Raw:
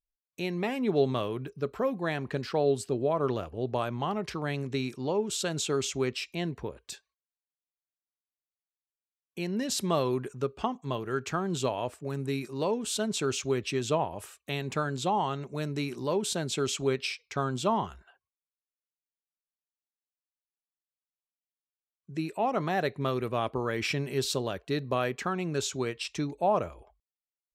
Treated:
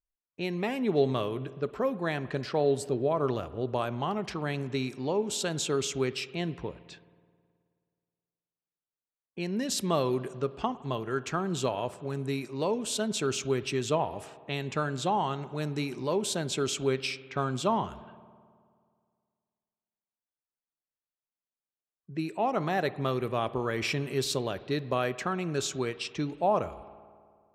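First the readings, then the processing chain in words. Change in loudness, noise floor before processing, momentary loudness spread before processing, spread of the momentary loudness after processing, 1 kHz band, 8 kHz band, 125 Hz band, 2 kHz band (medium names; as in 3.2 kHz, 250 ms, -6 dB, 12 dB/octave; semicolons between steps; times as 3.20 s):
0.0 dB, under -85 dBFS, 7 LU, 7 LU, 0.0 dB, 0.0 dB, 0.0 dB, 0.0 dB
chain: spring tank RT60 2.1 s, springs 53 ms, chirp 75 ms, DRR 16 dB; level-controlled noise filter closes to 1.4 kHz, open at -28 dBFS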